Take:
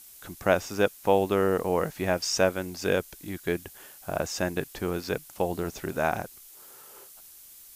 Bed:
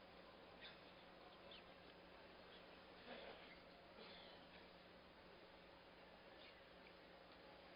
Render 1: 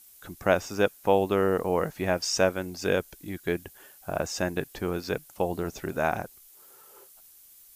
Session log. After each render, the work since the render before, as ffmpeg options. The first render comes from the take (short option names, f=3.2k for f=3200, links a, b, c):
-af "afftdn=nr=6:nf=-50"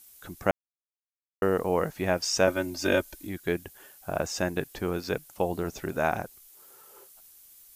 -filter_complex "[0:a]asettb=1/sr,asplit=3[a][b][c];[a]atrim=end=2.474[d];[b]atrim=start=2.47:end=3.27,asetpts=PTS-STARTPTS,afade=t=in:d=0.004:c=qsin,afade=t=out:st=0.796:d=0.004:c=qsin,aecho=1:1:3.3:0.94,atrim=end_sample=35280[e];[c]atrim=start=3.266[f];[d][e]acrossfade=d=0.004:c1=hsin:c2=qsin[g];[g][f]acrossfade=d=0.004:c1=qsin:c2=hsin,asplit=3[h][i][j];[h]atrim=end=0.51,asetpts=PTS-STARTPTS,afade=t=out:st=0.506:d=0.004:c=hsin[k];[i]atrim=start=0.51:end=1.42,asetpts=PTS-STARTPTS,volume=0[l];[j]atrim=start=1.42,asetpts=PTS-STARTPTS,afade=t=in:d=0.004:c=hsin[m];[k][l][m]concat=n=3:v=0:a=1"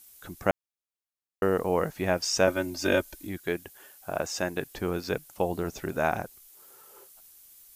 -filter_complex "[0:a]asettb=1/sr,asplit=3[a][b][c];[a]atrim=end=3.414[d];[b]atrim=start=3.41:end=4.63,asetpts=PTS-STARTPTS,afade=t=in:d=0.004:c=qsin,afade=t=out:st=1.216:d=0.004:c=qsin,lowshelf=f=220:g=-7[e];[c]atrim=start=4.626[f];[d][e]acrossfade=d=0.004:c1=hsin:c2=qsin[g];[g][f]acrossfade=d=0.004:c1=qsin:c2=hsin"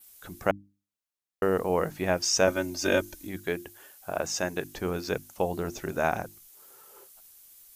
-af "bandreject=f=50:t=h:w=6,bandreject=f=100:t=h:w=6,bandreject=f=150:t=h:w=6,bandreject=f=200:t=h:w=6,bandreject=f=250:t=h:w=6,bandreject=f=300:t=h:w=6,bandreject=f=350:t=h:w=6,adynamicequalizer=threshold=0.00251:dfrequency=6200:dqfactor=4.2:tfrequency=6200:tqfactor=4.2:attack=5:release=100:ratio=0.375:range=3:mode=boostabove:tftype=bell"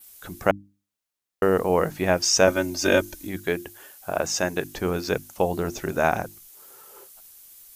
-af "volume=5dB"